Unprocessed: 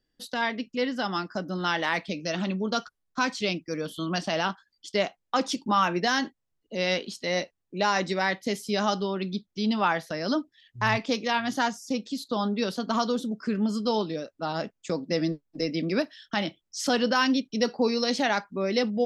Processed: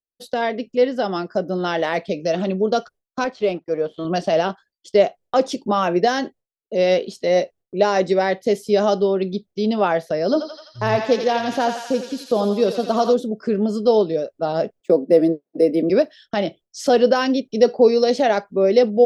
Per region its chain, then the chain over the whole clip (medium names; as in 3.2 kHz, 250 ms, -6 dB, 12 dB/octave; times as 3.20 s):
3.24–4.05 s: companding laws mixed up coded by A + low-pass 5.5 kHz + overdrive pedal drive 9 dB, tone 1.2 kHz, clips at -13 dBFS
10.24–13.14 s: peaking EQ 2.1 kHz -4 dB 0.75 oct + thinning echo 85 ms, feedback 82%, high-pass 960 Hz, level -5 dB
14.80–15.90 s: high-pass 220 Hz 24 dB/octave + tilt EQ -2.5 dB/octave + decimation joined by straight lines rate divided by 3×
whole clip: high-order bell 520 Hz +10.5 dB 1.2 oct; expander -42 dBFS; bass shelf 390 Hz +6 dB